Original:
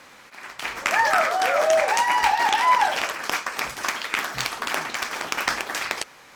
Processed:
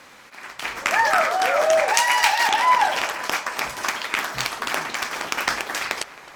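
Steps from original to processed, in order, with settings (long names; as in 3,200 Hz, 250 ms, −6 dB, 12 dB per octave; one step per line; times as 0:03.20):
0:01.94–0:02.48: tilt shelving filter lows −7.5 dB, about 1,200 Hz
on a send: feedback echo with a low-pass in the loop 266 ms, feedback 84%, low-pass 3,800 Hz, level −20 dB
on the sum: level +1 dB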